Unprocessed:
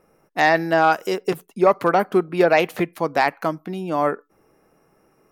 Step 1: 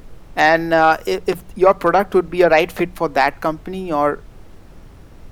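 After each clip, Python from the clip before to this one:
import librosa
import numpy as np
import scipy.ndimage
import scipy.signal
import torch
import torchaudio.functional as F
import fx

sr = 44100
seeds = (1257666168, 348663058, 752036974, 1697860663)

y = scipy.signal.sosfilt(scipy.signal.butter(2, 140.0, 'highpass', fs=sr, output='sos'), x)
y = fx.hum_notches(y, sr, base_hz=60, count=3)
y = fx.dmg_noise_colour(y, sr, seeds[0], colour='brown', level_db=-41.0)
y = y * 10.0 ** (3.5 / 20.0)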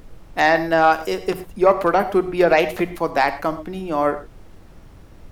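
y = fx.rev_gated(x, sr, seeds[1], gate_ms=140, shape='flat', drr_db=11.0)
y = y * 10.0 ** (-3.0 / 20.0)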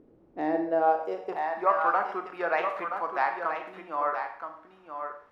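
y = x + 10.0 ** (-7.5 / 20.0) * np.pad(x, (int(975 * sr / 1000.0), 0))[:len(x)]
y = fx.rev_schroeder(y, sr, rt60_s=0.48, comb_ms=26, drr_db=7.0)
y = fx.filter_sweep_bandpass(y, sr, from_hz=350.0, to_hz=1200.0, start_s=0.5, end_s=1.74, q=2.1)
y = y * 10.0 ** (-3.5 / 20.0)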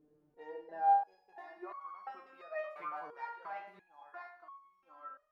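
y = fx.resonator_held(x, sr, hz=2.9, low_hz=150.0, high_hz=1100.0)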